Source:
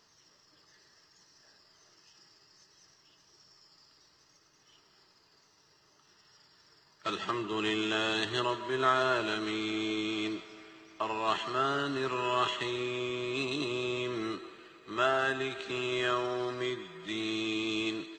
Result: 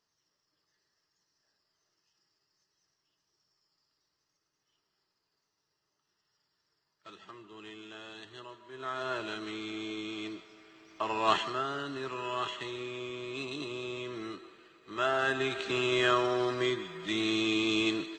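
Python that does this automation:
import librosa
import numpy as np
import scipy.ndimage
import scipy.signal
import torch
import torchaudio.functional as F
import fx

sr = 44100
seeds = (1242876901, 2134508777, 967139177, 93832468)

y = fx.gain(x, sr, db=fx.line((8.65, -16.5), (9.13, -5.5), (10.62, -5.5), (11.35, 4.5), (11.65, -5.0), (14.8, -5.0), (15.53, 4.0)))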